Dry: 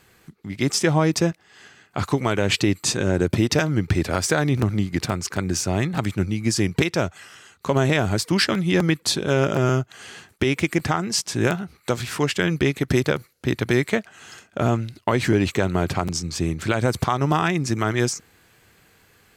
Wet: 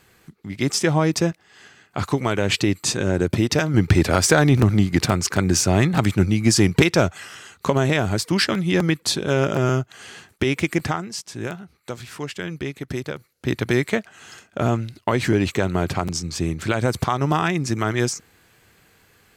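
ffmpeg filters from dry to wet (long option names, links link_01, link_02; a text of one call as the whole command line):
ffmpeg -i in.wav -filter_complex "[0:a]asettb=1/sr,asplit=3[link_01][link_02][link_03];[link_01]atrim=end=3.744[link_04];[link_02]atrim=start=3.74:end=7.7,asetpts=PTS-STARTPTS,afade=type=in:duration=0.004:curve=qsin,afade=type=out:start_time=3.956:duration=0.004:curve=qsin,acontrast=41[link_05];[link_03]atrim=start=7.696[link_06];[link_04][link_05]acrossfade=duration=0.004:curve1=hsin:curve2=qsin[link_07];[link_07][link_06]acrossfade=duration=0.004:curve1=qsin:curve2=hsin,asplit=3[link_08][link_09][link_10];[link_08]atrim=end=11.11,asetpts=PTS-STARTPTS,afade=type=out:start_time=10.84:duration=0.27:silence=0.375837[link_11];[link_09]atrim=start=11.11:end=13.24,asetpts=PTS-STARTPTS,volume=-8.5dB[link_12];[link_10]atrim=start=13.24,asetpts=PTS-STARTPTS,afade=type=in:duration=0.27:silence=0.375837[link_13];[link_11][link_12][link_13]concat=n=3:v=0:a=1" out.wav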